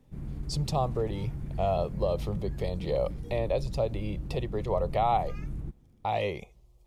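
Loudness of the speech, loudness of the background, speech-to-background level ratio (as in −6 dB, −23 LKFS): −31.5 LKFS, −39.0 LKFS, 7.5 dB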